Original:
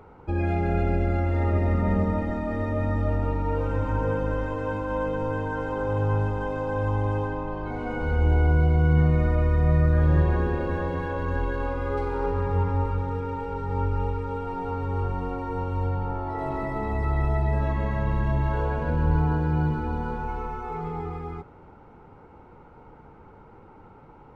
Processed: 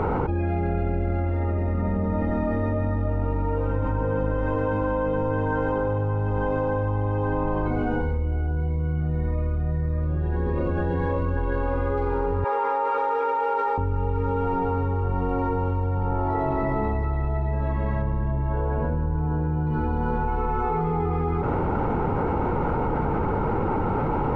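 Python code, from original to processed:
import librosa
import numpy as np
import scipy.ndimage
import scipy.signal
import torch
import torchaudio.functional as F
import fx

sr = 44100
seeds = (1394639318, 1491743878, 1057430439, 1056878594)

y = fx.notch_cascade(x, sr, direction='rising', hz=1.7, at=(7.67, 11.37))
y = fx.highpass(y, sr, hz=520.0, slope=24, at=(12.44, 13.78))
y = fx.high_shelf(y, sr, hz=2200.0, db=-10.5, at=(18.02, 19.67))
y = fx.lowpass(y, sr, hz=1600.0, slope=6)
y = fx.env_flatten(y, sr, amount_pct=100)
y = y * librosa.db_to_amplitude(-7.0)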